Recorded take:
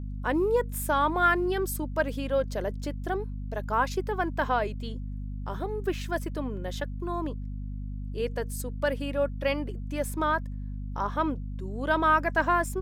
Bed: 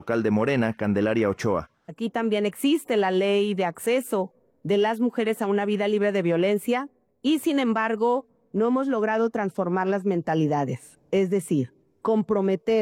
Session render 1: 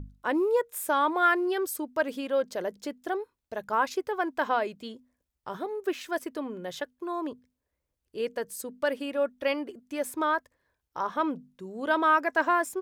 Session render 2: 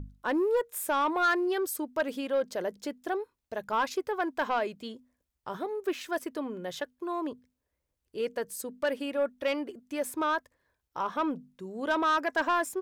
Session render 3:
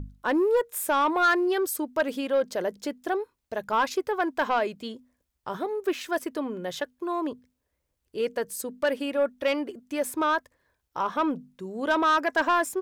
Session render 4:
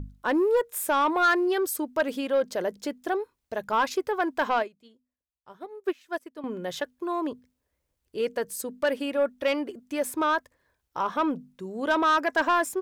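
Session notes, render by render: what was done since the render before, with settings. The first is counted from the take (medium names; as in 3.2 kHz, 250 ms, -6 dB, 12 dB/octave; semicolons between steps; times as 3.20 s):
hum notches 50/100/150/200/250 Hz
saturation -19.5 dBFS, distortion -15 dB
trim +4 dB
4.62–6.44 s: upward expansion 2.5:1, over -35 dBFS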